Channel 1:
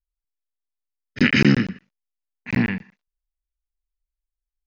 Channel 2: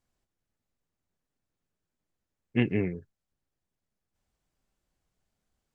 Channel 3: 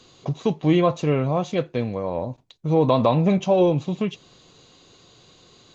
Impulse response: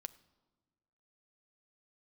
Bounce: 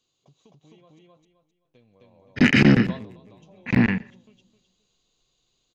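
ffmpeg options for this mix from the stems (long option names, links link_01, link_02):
-filter_complex "[0:a]lowpass=frequency=3100:poles=1,adelay=1200,volume=1.5dB,asplit=2[link_01][link_02];[link_02]volume=-10dB[link_03];[1:a]afwtdn=0.0112,adynamicsmooth=sensitivity=6:basefreq=620,volume=-7dB,asplit=3[link_04][link_05][link_06];[link_05]volume=-10dB[link_07];[2:a]acompressor=threshold=-27dB:ratio=4,aexciter=amount=2.2:drive=5.2:freq=2600,volume=-8.5dB,asplit=3[link_08][link_09][link_10];[link_08]atrim=end=0.99,asetpts=PTS-STARTPTS,afade=type=out:start_time=0.986:duration=0.004:curve=hsin[link_11];[link_09]atrim=start=0.99:end=1.65,asetpts=PTS-STARTPTS,volume=0[link_12];[link_10]atrim=start=1.65,asetpts=PTS-STARTPTS,afade=type=in:duration=0.004:curve=hsin[link_13];[link_11][link_12][link_13]concat=n=3:v=0:a=1,asplit=2[link_14][link_15];[link_15]volume=-18.5dB[link_16];[link_06]apad=whole_len=253248[link_17];[link_14][link_17]sidechaingate=range=-19dB:threshold=-49dB:ratio=16:detection=peak[link_18];[3:a]atrim=start_sample=2205[link_19];[link_03][link_19]afir=irnorm=-1:irlink=0[link_20];[link_07][link_16]amix=inputs=2:normalize=0,aecho=0:1:261|522|783|1044:1|0.3|0.09|0.027[link_21];[link_01][link_04][link_18][link_20][link_21]amix=inputs=5:normalize=0,asoftclip=type=tanh:threshold=-6.5dB"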